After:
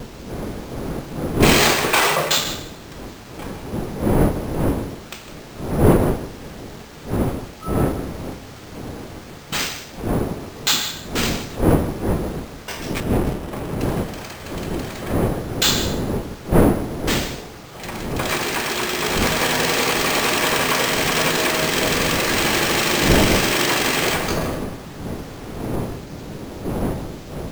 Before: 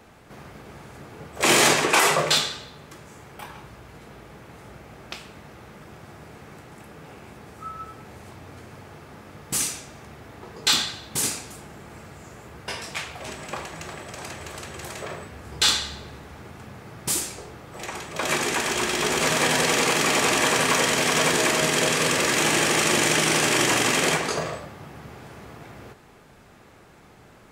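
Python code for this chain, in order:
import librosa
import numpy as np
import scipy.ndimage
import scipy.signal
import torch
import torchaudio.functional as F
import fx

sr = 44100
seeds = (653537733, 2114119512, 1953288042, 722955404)

p1 = fx.dmg_wind(x, sr, seeds[0], corner_hz=370.0, level_db=-26.0)
p2 = fx.quant_dither(p1, sr, seeds[1], bits=6, dither='triangular')
p3 = p1 + (p2 * 10.0 ** (-9.0 / 20.0))
p4 = fx.vibrato(p3, sr, rate_hz=0.39, depth_cents=6.6)
p5 = np.repeat(p4[::4], 4)[:len(p4)]
p6 = p5 + fx.echo_single(p5, sr, ms=155, db=-12.5, dry=0)
p7 = fx.running_max(p6, sr, window=17, at=(13.0, 13.8))
y = p7 * 10.0 ** (-1.0 / 20.0)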